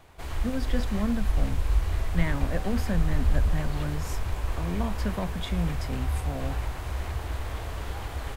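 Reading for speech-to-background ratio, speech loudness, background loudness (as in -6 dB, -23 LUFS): -1.0 dB, -33.0 LUFS, -32.0 LUFS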